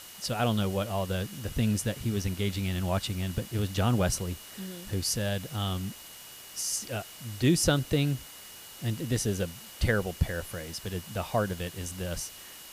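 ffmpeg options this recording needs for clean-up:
-af "adeclick=t=4,bandreject=f=2.9k:w=30,afwtdn=0.005"

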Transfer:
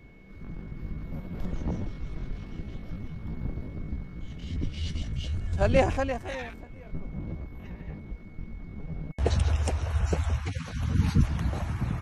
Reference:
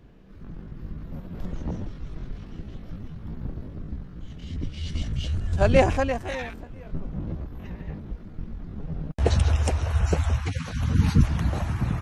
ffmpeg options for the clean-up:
-af "bandreject=f=2.2k:w=30,asetnsamples=n=441:p=0,asendcmd='4.92 volume volume 4dB',volume=0dB"

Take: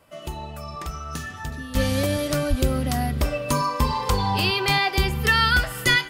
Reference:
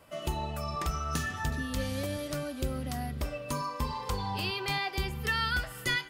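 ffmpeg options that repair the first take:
-filter_complex "[0:a]asplit=3[a][b][c];[a]afade=t=out:st=2.49:d=0.02[d];[b]highpass=f=140:w=0.5412,highpass=f=140:w=1.3066,afade=t=in:st=2.49:d=0.02,afade=t=out:st=2.61:d=0.02[e];[c]afade=t=in:st=2.61:d=0.02[f];[d][e][f]amix=inputs=3:normalize=0,asetnsamples=n=441:p=0,asendcmd='1.75 volume volume -11dB',volume=0dB"

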